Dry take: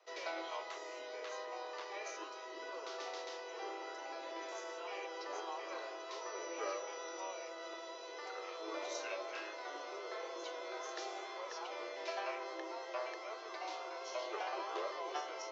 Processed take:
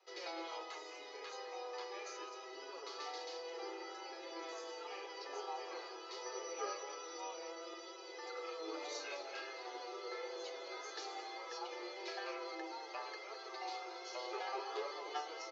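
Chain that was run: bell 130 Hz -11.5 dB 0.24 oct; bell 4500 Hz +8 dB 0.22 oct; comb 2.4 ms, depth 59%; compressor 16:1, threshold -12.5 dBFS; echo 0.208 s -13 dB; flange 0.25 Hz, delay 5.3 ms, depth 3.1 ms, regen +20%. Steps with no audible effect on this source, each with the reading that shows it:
bell 130 Hz: input band starts at 270 Hz; compressor, threshold -12.5 dBFS: input peak -24.0 dBFS

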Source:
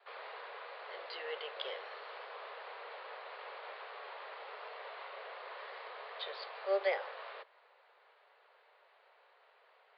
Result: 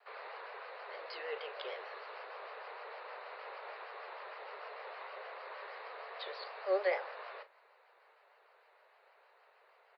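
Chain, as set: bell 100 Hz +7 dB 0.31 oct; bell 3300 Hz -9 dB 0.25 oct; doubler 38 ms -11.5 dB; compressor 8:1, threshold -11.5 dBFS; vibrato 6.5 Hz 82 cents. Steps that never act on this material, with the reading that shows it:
bell 100 Hz: input band starts at 360 Hz; compressor, threshold -11.5 dBFS: input peak -21.0 dBFS

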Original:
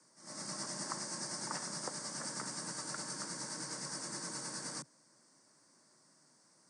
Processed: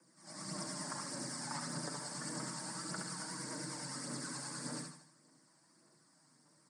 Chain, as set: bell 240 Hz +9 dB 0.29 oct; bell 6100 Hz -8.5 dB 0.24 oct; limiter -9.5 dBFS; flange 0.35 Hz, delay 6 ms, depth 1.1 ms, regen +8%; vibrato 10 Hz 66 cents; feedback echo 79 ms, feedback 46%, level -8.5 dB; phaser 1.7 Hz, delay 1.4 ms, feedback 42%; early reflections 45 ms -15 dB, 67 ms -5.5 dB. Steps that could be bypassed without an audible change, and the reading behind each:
limiter -9.5 dBFS: input peak -23.0 dBFS

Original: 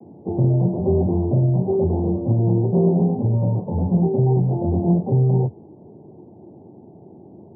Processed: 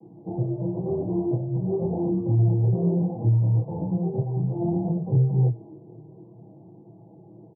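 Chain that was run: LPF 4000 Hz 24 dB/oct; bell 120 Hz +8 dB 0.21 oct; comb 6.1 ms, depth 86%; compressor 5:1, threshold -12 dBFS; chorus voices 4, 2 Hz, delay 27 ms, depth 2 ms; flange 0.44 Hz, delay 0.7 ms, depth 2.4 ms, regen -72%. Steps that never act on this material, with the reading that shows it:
LPF 4000 Hz: input band ends at 810 Hz

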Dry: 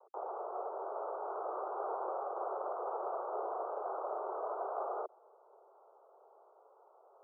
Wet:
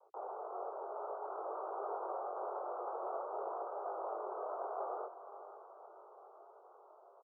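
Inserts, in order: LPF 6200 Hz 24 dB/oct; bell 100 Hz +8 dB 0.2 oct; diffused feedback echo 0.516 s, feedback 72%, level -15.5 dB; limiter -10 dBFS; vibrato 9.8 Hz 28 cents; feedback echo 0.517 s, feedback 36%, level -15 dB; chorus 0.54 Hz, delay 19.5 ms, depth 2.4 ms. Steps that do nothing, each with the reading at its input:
LPF 6200 Hz: input band ends at 1500 Hz; bell 100 Hz: input band starts at 300 Hz; limiter -10 dBFS: input peak -26.0 dBFS

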